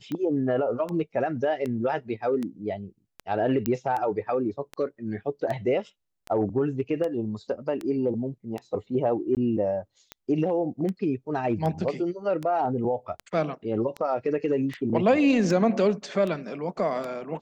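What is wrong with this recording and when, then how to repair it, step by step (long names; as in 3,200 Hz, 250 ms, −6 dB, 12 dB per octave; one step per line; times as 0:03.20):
scratch tick 78 rpm −20 dBFS
0:03.66: click −12 dBFS
0:09.35–0:09.37: drop-out 18 ms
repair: click removal
repair the gap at 0:09.35, 18 ms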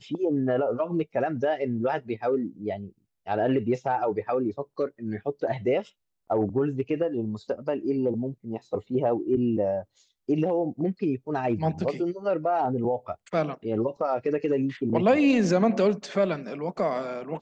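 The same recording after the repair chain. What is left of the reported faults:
none of them is left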